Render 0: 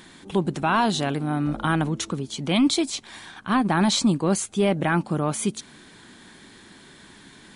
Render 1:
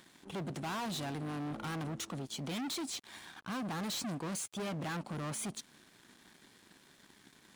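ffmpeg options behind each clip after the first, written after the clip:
ffmpeg -i in.wav -af "volume=29.5dB,asoftclip=hard,volume=-29.5dB,highpass=89,aeval=exprs='sgn(val(0))*max(abs(val(0))-0.00335,0)':channel_layout=same,volume=-6dB" out.wav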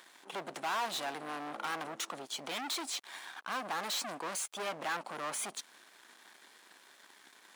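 ffmpeg -i in.wav -filter_complex "[0:a]highpass=640,asplit=2[link_01][link_02];[link_02]adynamicsmooth=sensitivity=6.5:basefreq=2700,volume=-5dB[link_03];[link_01][link_03]amix=inputs=2:normalize=0,volume=3dB" out.wav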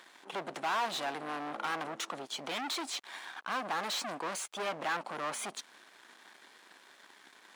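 ffmpeg -i in.wav -af "highshelf=frequency=7100:gain=-9,volume=2.5dB" out.wav

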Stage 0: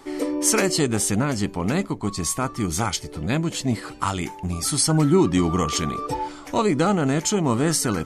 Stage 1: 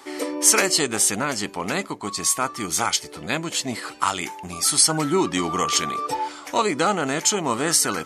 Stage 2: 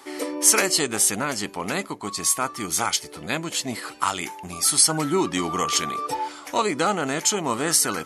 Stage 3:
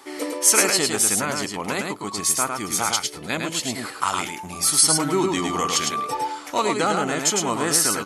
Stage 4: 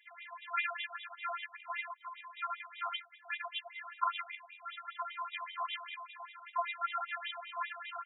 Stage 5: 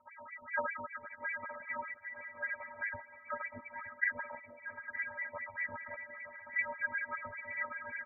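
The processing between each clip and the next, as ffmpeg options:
ffmpeg -i in.wav -af "highpass=frequency=840:poles=1,volume=5dB" out.wav
ffmpeg -i in.wav -af "equalizer=frequency=11000:width=5.8:gain=8.5,volume=-1.5dB" out.wav
ffmpeg -i in.wav -af "aecho=1:1:106:0.631" out.wav
ffmpeg -i in.wav -af "afftfilt=real='hypot(re,im)*cos(PI*b)':imag='0':win_size=512:overlap=0.75,afftfilt=real='re*between(b*sr/1024,920*pow(2800/920,0.5+0.5*sin(2*PI*5.1*pts/sr))/1.41,920*pow(2800/920,0.5+0.5*sin(2*PI*5.1*pts/sr))*1.41)':imag='im*between(b*sr/1024,920*pow(2800/920,0.5+0.5*sin(2*PI*5.1*pts/sr))/1.41,920*pow(2800/920,0.5+0.5*sin(2*PI*5.1*pts/sr))*1.41)':win_size=1024:overlap=0.75,volume=-4.5dB" out.wav
ffmpeg -i in.wav -filter_complex "[0:a]asplit=2[link_01][link_02];[link_02]aecho=0:1:918|1836|2754|3672:0.251|0.0879|0.0308|0.0108[link_03];[link_01][link_03]amix=inputs=2:normalize=0,lowpass=frequency=2600:width_type=q:width=0.5098,lowpass=frequency=2600:width_type=q:width=0.6013,lowpass=frequency=2600:width_type=q:width=0.9,lowpass=frequency=2600:width_type=q:width=2.563,afreqshift=-3000" out.wav

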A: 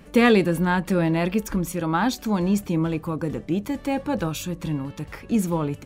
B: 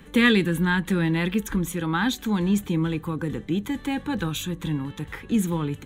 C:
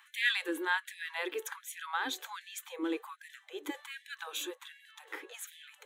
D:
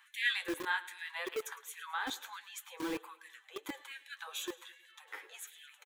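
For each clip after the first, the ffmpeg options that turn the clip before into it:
ffmpeg -i in.wav -filter_complex "[0:a]superequalizer=8b=0.355:11b=1.58:13b=1.78:14b=0.447,acrossover=split=370|1100|6500[link_01][link_02][link_03][link_04];[link_02]acompressor=threshold=-36dB:ratio=6[link_05];[link_01][link_05][link_03][link_04]amix=inputs=4:normalize=0" out.wav
ffmpeg -i in.wav -af "lowshelf=frequency=270:gain=11.5,tremolo=f=2.7:d=0.33,afftfilt=real='re*gte(b*sr/1024,280*pow(1700/280,0.5+0.5*sin(2*PI*1.3*pts/sr)))':imag='im*gte(b*sr/1024,280*pow(1700/280,0.5+0.5*sin(2*PI*1.3*pts/sr)))':win_size=1024:overlap=0.75,volume=-5.5dB" out.wav
ffmpeg -i in.wav -filter_complex "[0:a]flanger=delay=7.4:depth=4.1:regen=39:speed=1.6:shape=sinusoidal,aecho=1:1:107|214|321|428:0.126|0.0655|0.034|0.0177,acrossover=split=450|880|4600[link_01][link_02][link_03][link_04];[link_01]acrusher=bits=6:mix=0:aa=0.000001[link_05];[link_05][link_02][link_03][link_04]amix=inputs=4:normalize=0,volume=1dB" out.wav

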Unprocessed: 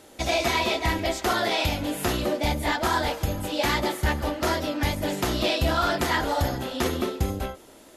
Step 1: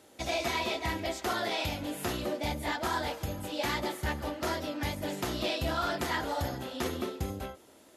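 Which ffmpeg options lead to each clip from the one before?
ffmpeg -i in.wav -af "highpass=64,volume=-7.5dB" out.wav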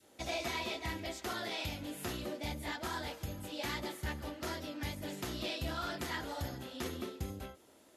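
ffmpeg -i in.wav -af "adynamicequalizer=threshold=0.00501:dfrequency=760:dqfactor=0.77:tfrequency=760:tqfactor=0.77:attack=5:release=100:ratio=0.375:range=2.5:mode=cutabove:tftype=bell,volume=-5dB" out.wav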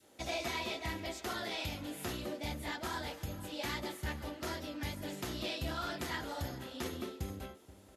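ffmpeg -i in.wav -filter_complex "[0:a]asplit=2[link_01][link_02];[link_02]adelay=478.1,volume=-17dB,highshelf=frequency=4000:gain=-10.8[link_03];[link_01][link_03]amix=inputs=2:normalize=0" out.wav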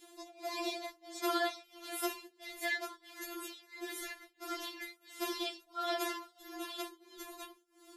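ffmpeg -i in.wav -af "acompressor=threshold=-39dB:ratio=6,tremolo=f=1.5:d=0.97,afftfilt=real='re*4*eq(mod(b,16),0)':imag='im*4*eq(mod(b,16),0)':win_size=2048:overlap=0.75,volume=10.5dB" out.wav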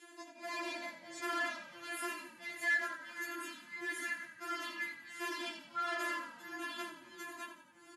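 ffmpeg -i in.wav -filter_complex "[0:a]asoftclip=type=tanh:threshold=-36.5dB,highpass=370,equalizer=frequency=400:width_type=q:width=4:gain=-3,equalizer=frequency=720:width_type=q:width=4:gain=-7,equalizer=frequency=1700:width_type=q:width=4:gain=8,equalizer=frequency=3800:width_type=q:width=4:gain=-10,equalizer=frequency=5600:width_type=q:width=4:gain=-8,equalizer=frequency=8300:width_type=q:width=4:gain=-7,lowpass=frequency=9700:width=0.5412,lowpass=frequency=9700:width=1.3066,asplit=2[link_01][link_02];[link_02]asplit=6[link_03][link_04][link_05][link_06][link_07][link_08];[link_03]adelay=87,afreqshift=-41,volume=-11dB[link_09];[link_04]adelay=174,afreqshift=-82,volume=-16.4dB[link_10];[link_05]adelay=261,afreqshift=-123,volume=-21.7dB[link_11];[link_06]adelay=348,afreqshift=-164,volume=-27.1dB[link_12];[link_07]adelay=435,afreqshift=-205,volume=-32.4dB[link_13];[link_08]adelay=522,afreqshift=-246,volume=-37.8dB[link_14];[link_09][link_10][link_11][link_12][link_13][link_14]amix=inputs=6:normalize=0[link_15];[link_01][link_15]amix=inputs=2:normalize=0,volume=4dB" out.wav

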